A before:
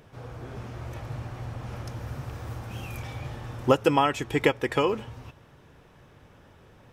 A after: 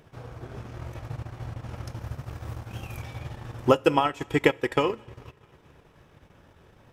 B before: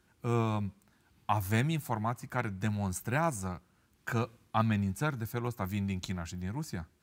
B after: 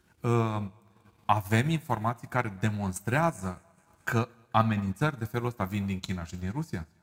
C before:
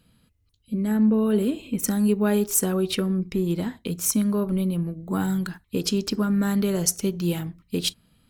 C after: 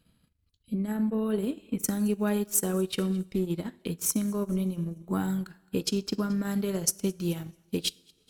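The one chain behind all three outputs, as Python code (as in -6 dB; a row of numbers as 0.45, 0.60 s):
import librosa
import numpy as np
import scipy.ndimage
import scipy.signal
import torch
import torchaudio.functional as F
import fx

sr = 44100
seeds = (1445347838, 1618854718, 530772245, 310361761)

y = fx.echo_thinned(x, sr, ms=218, feedback_pct=54, hz=490.0, wet_db=-22.0)
y = fx.rev_double_slope(y, sr, seeds[0], early_s=0.49, late_s=2.3, knee_db=-16, drr_db=10.5)
y = fx.transient(y, sr, attack_db=4, sustain_db=-10)
y = y * 10.0 ** (-30 / 20.0) / np.sqrt(np.mean(np.square(y)))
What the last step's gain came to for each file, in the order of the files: -1.5, +2.5, -6.0 dB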